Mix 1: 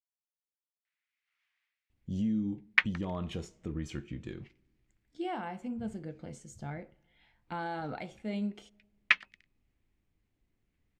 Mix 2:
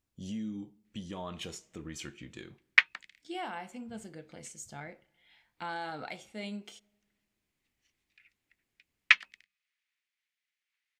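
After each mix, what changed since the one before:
speech: entry −1.90 s
master: add spectral tilt +3 dB per octave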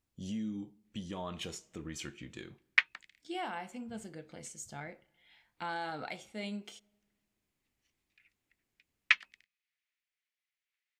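background −4.5 dB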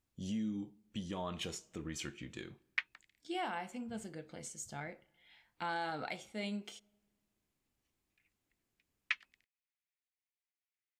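background −10.0 dB

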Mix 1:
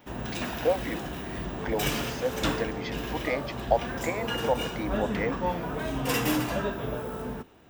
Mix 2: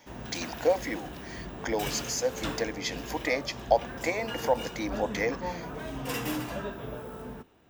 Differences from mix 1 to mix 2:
speech: remove high-frequency loss of the air 250 metres
background −6.0 dB

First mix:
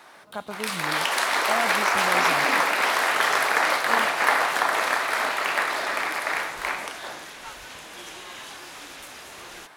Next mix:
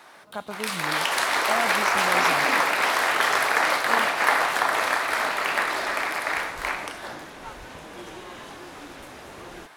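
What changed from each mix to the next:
second sound: add tilt shelving filter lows +8 dB, about 1,200 Hz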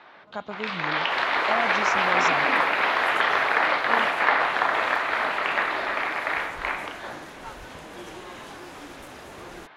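first sound: add low-pass filter 3,700 Hz 24 dB per octave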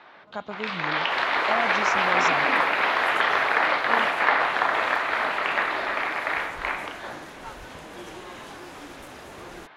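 nothing changed

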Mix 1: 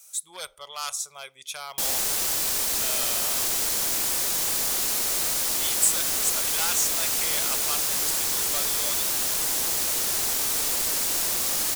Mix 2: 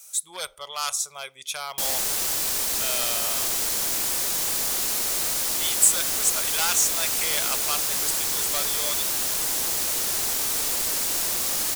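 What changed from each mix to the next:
speech +4.0 dB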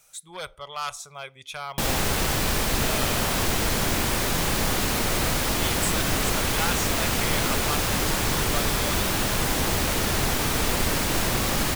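background +8.5 dB
master: add bass and treble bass +12 dB, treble −14 dB

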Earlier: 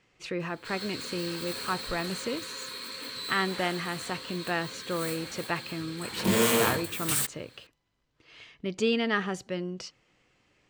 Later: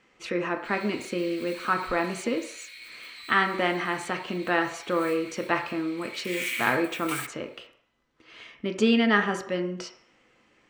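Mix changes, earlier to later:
background: add four-pole ladder high-pass 2,100 Hz, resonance 75%
reverb: on, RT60 0.60 s

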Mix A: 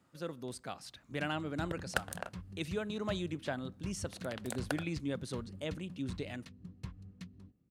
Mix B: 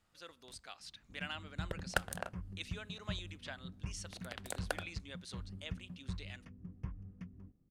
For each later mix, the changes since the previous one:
speech: add resonant band-pass 3,800 Hz, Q 0.68
first sound: add moving average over 11 samples
master: remove high-pass filter 69 Hz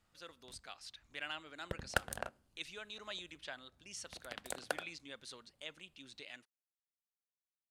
first sound: muted

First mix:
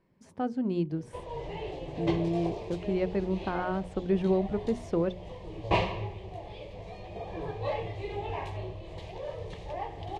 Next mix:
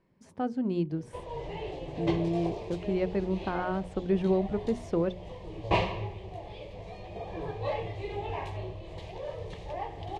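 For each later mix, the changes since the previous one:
nothing changed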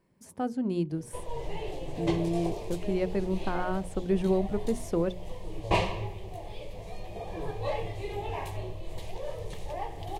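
background: remove high-pass filter 42 Hz
master: remove low-pass filter 4,400 Hz 12 dB per octave

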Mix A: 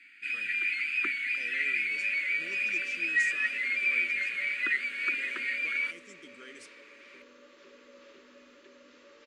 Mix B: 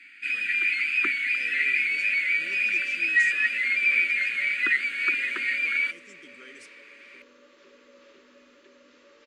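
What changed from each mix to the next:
first sound +5.5 dB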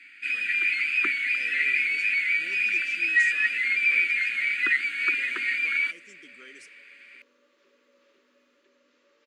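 second sound −9.5 dB
master: add low-shelf EQ 110 Hz −10 dB

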